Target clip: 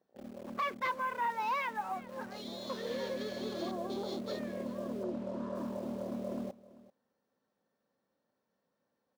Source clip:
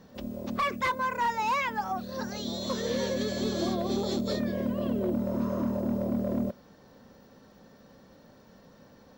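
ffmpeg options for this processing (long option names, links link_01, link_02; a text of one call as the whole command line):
ffmpeg -i in.wav -filter_complex "[0:a]highpass=frequency=400:poles=1,afwtdn=0.00631,highshelf=frequency=3700:gain=-7,asplit=2[link_01][link_02];[link_02]acrusher=bits=6:mix=0:aa=0.000001,volume=-9dB[link_03];[link_01][link_03]amix=inputs=2:normalize=0,asplit=3[link_04][link_05][link_06];[link_04]afade=type=out:start_time=5.03:duration=0.02[link_07];[link_05]adynamicsmooth=sensitivity=7:basefreq=4600,afade=type=in:start_time=5.03:duration=0.02,afade=type=out:start_time=5.54:duration=0.02[link_08];[link_06]afade=type=in:start_time=5.54:duration=0.02[link_09];[link_07][link_08][link_09]amix=inputs=3:normalize=0,asplit=2[link_10][link_11];[link_11]aecho=0:1:390:0.112[link_12];[link_10][link_12]amix=inputs=2:normalize=0,volume=-7dB" out.wav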